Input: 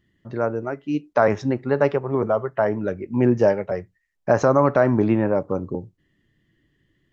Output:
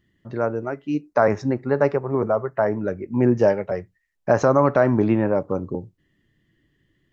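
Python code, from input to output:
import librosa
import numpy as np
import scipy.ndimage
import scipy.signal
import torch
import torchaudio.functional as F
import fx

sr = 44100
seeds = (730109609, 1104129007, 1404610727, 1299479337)

y = fx.peak_eq(x, sr, hz=3200.0, db=-13.5, octaves=0.41, at=(0.94, 3.37))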